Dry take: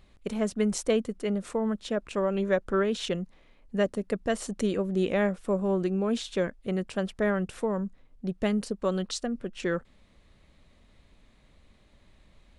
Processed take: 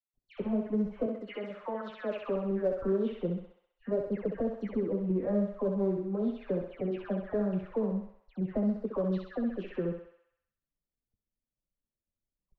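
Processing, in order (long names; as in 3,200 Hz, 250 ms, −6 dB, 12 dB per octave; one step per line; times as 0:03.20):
reverb reduction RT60 0.59 s
0:00.92–0:02.14: RIAA equalisation recording
treble cut that deepens with the level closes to 540 Hz, closed at −25 dBFS
noise gate −51 dBFS, range −31 dB
low-pass that shuts in the quiet parts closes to 570 Hz, open at −25.5 dBFS
high-shelf EQ 6,100 Hz −12 dB
all-pass dispersion lows, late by 141 ms, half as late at 1,700 Hz
flanger 1.2 Hz, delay 5.2 ms, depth 4.7 ms, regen −29%
in parallel at −11.5 dB: hard clipping −29 dBFS, distortion −13 dB
on the sum: feedback echo with a high-pass in the loop 65 ms, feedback 64%, high-pass 530 Hz, level −3 dB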